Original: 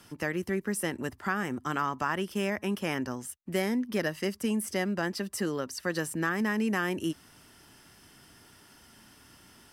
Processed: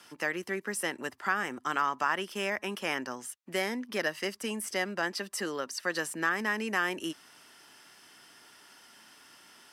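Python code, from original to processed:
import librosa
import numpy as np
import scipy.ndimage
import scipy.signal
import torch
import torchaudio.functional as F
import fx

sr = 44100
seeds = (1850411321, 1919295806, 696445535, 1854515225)

y = fx.weighting(x, sr, curve='A')
y = y * 10.0 ** (1.5 / 20.0)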